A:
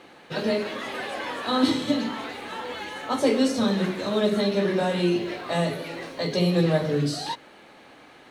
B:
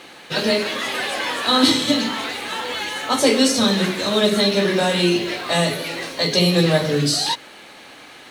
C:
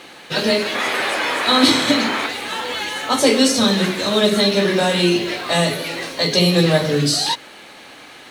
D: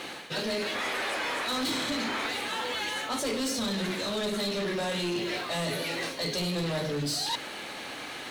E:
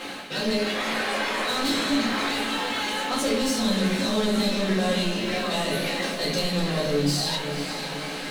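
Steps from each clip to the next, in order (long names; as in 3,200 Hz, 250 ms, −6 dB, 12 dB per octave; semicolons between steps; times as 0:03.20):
high-shelf EQ 2,100 Hz +11.5 dB; level +4 dB
sound drawn into the spectrogram noise, 0:00.74–0:02.27, 290–2,600 Hz −26 dBFS; level +1.5 dB
soft clipping −16.5 dBFS, distortion −10 dB; reversed playback; downward compressor 5 to 1, threshold −32 dBFS, peak gain reduction 12 dB; reversed playback; level +1.5 dB
feedback delay with all-pass diffusion 530 ms, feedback 58%, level −9 dB; rectangular room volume 200 cubic metres, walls furnished, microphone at 2.1 metres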